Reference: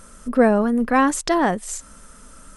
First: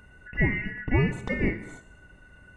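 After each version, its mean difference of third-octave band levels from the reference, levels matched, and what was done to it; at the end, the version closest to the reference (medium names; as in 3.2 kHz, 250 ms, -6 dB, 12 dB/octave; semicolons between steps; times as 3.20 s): 11.0 dB: four frequency bands reordered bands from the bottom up 2143; Savitzky-Golay filter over 65 samples; bass shelf 160 Hz +11.5 dB; gated-style reverb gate 320 ms falling, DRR 9.5 dB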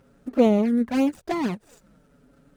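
7.0 dB: median filter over 41 samples; high-pass 75 Hz 12 dB/octave; touch-sensitive flanger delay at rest 7.6 ms, full sweep at -14.5 dBFS; endings held to a fixed fall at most 500 dB/s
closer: second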